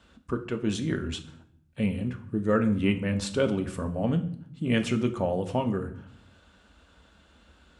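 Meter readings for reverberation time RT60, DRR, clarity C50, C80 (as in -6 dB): 0.65 s, 6.0 dB, 13.0 dB, 16.5 dB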